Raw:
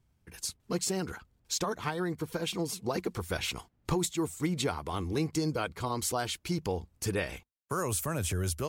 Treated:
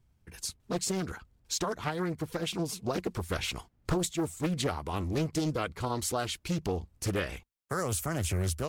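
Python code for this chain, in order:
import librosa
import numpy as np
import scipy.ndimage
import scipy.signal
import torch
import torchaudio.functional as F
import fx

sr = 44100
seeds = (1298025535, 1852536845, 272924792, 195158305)

y = fx.low_shelf(x, sr, hz=63.0, db=7.5)
y = fx.doppler_dist(y, sr, depth_ms=0.7)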